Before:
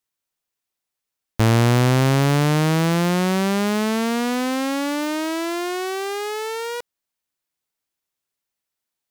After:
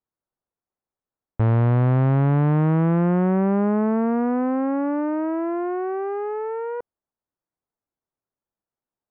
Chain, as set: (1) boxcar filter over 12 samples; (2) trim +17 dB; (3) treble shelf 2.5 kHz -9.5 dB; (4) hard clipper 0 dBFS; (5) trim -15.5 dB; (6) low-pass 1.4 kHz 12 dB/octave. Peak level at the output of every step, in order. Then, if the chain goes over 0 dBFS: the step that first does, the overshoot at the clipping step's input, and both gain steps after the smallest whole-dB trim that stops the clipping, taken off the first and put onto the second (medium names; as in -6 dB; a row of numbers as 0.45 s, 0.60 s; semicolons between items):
-10.5 dBFS, +6.5 dBFS, +6.5 dBFS, 0.0 dBFS, -15.5 dBFS, -15.0 dBFS; step 2, 6.5 dB; step 2 +10 dB, step 5 -8.5 dB